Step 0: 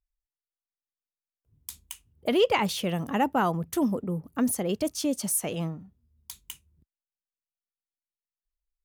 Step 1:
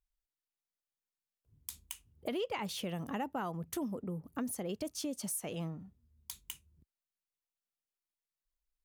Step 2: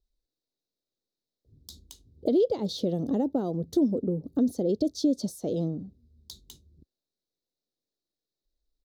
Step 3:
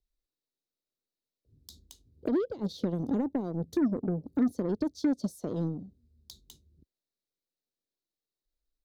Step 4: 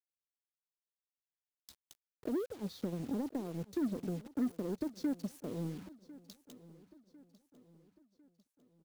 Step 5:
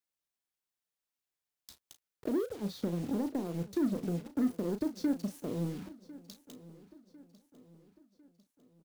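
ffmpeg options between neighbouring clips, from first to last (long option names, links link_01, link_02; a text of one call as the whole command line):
ffmpeg -i in.wav -af "acompressor=threshold=-36dB:ratio=3,volume=-2dB" out.wav
ffmpeg -i in.wav -af "firequalizer=gain_entry='entry(170,0);entry(280,7);entry(530,4);entry(960,-16);entry(2600,-27);entry(3800,2);entry(9100,-18);entry(16000,-16)':delay=0.05:min_phase=1,volume=8.5dB" out.wav
ffmpeg -i in.wav -filter_complex "[0:a]acrossover=split=310[link_01][link_02];[link_02]acompressor=threshold=-39dB:ratio=3[link_03];[link_01][link_03]amix=inputs=2:normalize=0,aeval=exprs='0.126*(cos(1*acos(clip(val(0)/0.126,-1,1)))-cos(1*PI/2))+0.00794*(cos(7*acos(clip(val(0)/0.126,-1,1)))-cos(7*PI/2))':channel_layout=same" out.wav
ffmpeg -i in.wav -af "acrusher=bits=7:mix=0:aa=0.000001,aecho=1:1:1050|2100|3150|4200:0.112|0.0527|0.0248|0.0116,volume=-7.5dB" out.wav
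ffmpeg -i in.wav -filter_complex "[0:a]asplit=2[link_01][link_02];[link_02]adelay=35,volume=-9.5dB[link_03];[link_01][link_03]amix=inputs=2:normalize=0,volume=3.5dB" out.wav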